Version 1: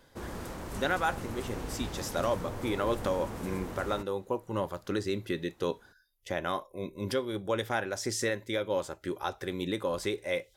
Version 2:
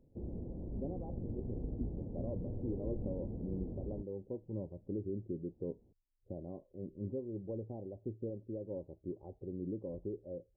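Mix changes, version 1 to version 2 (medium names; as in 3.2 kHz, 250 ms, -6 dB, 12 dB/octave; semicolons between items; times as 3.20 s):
speech -3.5 dB; master: add Gaussian low-pass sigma 19 samples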